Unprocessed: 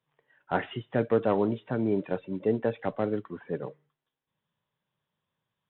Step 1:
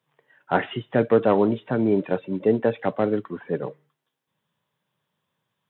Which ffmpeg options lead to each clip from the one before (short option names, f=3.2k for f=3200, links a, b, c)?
-af "highpass=110,volume=6.5dB"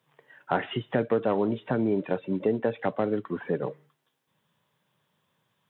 -af "acompressor=threshold=-31dB:ratio=2.5,volume=4.5dB"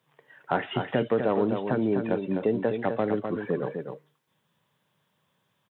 -af "aecho=1:1:253:0.473"